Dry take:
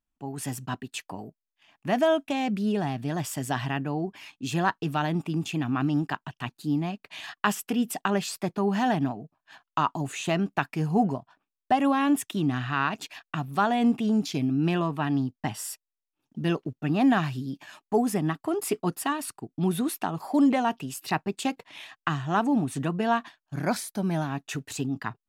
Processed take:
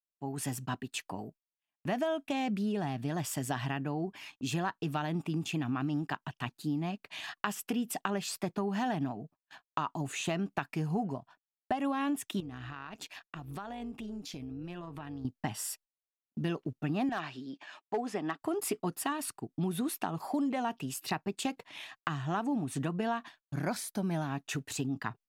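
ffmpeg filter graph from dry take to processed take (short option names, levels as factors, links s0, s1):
-filter_complex "[0:a]asettb=1/sr,asplit=3[s0][s1][s2];[s0]atrim=end=12.404[s3];[s1]atrim=start=12.4:end=15.25,asetpts=PTS-STARTPTS,afade=t=in:d=0.004:c=qsin,afade=t=out:st=2.846:d=0.004:c=qsin,acompressor=threshold=0.02:ratio=10:attack=3.2:release=140:knee=1:detection=peak,tremolo=f=190:d=0.462[s4];[s2]atrim=start=15.246[s5];[s3][s4]acrossfade=d=0.004:c1=hsin:c2=qsin[s6];[s6][s5]acrossfade=d=0.004:c1=qsin:c2=hsin,asettb=1/sr,asplit=3[s7][s8][s9];[s7]atrim=end=17.094[s10];[s8]atrim=start=17.09:end=18.42,asetpts=PTS-STARTPTS,afade=t=in:d=0.004:c=qsin,afade=t=out:st=1.326:d=0.004:c=qsin,highpass=350,lowpass=4700,asoftclip=type=hard:threshold=0.119[s11];[s9]atrim=start=18.416[s12];[s10][s11]acrossfade=d=0.004:c1=hsin:c2=qsin[s13];[s13][s12]acrossfade=d=0.004:c1=qsin:c2=hsin,agate=range=0.0282:threshold=0.00282:ratio=16:detection=peak,acompressor=threshold=0.0447:ratio=6,volume=0.794"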